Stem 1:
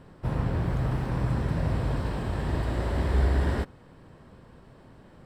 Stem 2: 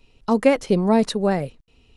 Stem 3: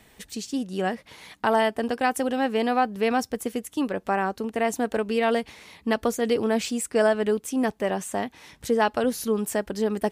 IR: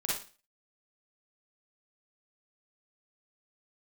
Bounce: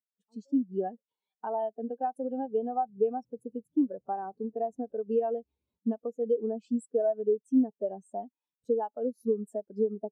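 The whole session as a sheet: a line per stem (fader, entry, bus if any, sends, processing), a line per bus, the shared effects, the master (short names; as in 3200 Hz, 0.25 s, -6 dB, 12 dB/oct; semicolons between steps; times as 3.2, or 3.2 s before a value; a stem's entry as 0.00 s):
-9.0 dB, 2.15 s, no send, compressor 10:1, threshold -34 dBFS, peak gain reduction 15.5 dB
-14.5 dB, 0.00 s, no send, HPF 570 Hz 6 dB/oct; overloaded stage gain 19 dB; auto duck -22 dB, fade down 1.10 s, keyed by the third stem
-0.5 dB, 0.00 s, no send, compressor 16:1, threshold -25 dBFS, peak gain reduction 10 dB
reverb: off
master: HPF 180 Hz 6 dB/oct; bell 2000 Hz -10.5 dB 0.3 oct; spectral expander 2.5:1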